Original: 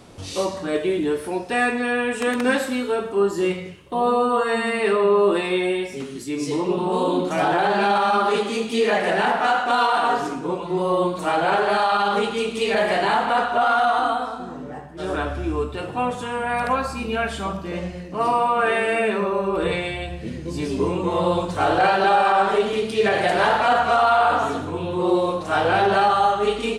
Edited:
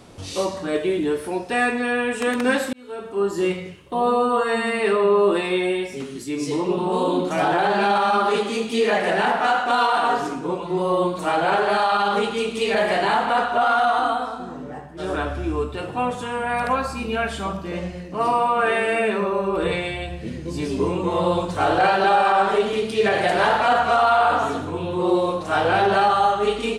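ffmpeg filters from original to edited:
-filter_complex "[0:a]asplit=2[a][b];[a]atrim=end=2.73,asetpts=PTS-STARTPTS,afade=t=out:st=2.726:d=0.004:c=hsin[c];[b]atrim=start=2.73,asetpts=PTS-STARTPTS,afade=t=in:d=0.66[d];[c][d]concat=n=2:v=0:a=1"

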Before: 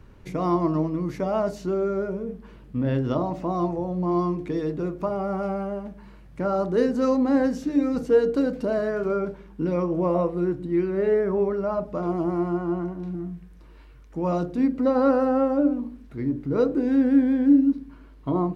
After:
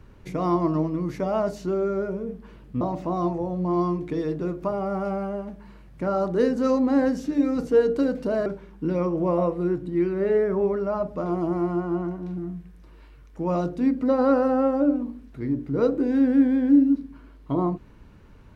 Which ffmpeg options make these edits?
-filter_complex "[0:a]asplit=3[a][b][c];[a]atrim=end=2.812[d];[b]atrim=start=3.188:end=8.842[e];[c]atrim=start=9.228[f];[d][e]acrossfade=d=0.004:c1=hsin:c2=hsin[g];[g][f]acrossfade=d=0.004:c1=hsin:c2=hsin"

